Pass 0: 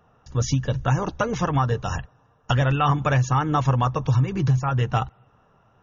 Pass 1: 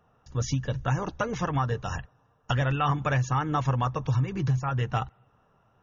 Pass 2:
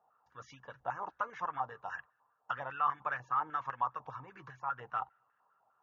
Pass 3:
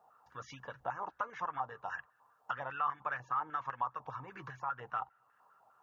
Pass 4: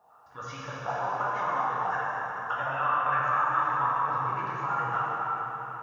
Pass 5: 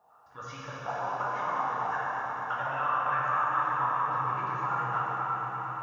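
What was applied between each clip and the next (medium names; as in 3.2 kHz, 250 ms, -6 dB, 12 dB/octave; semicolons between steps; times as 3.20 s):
dynamic bell 1.9 kHz, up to +3 dB, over -43 dBFS, Q 1.9; trim -5.5 dB
step-sequenced band-pass 10 Hz 810–1700 Hz
compression 1.5:1, threshold -55 dBFS, peak gain reduction 10.5 dB; trim +7 dB
plate-style reverb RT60 4.7 s, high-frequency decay 0.7×, DRR -8 dB; trim +2.5 dB
echo with a slow build-up 117 ms, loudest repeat 5, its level -16 dB; trim -2.5 dB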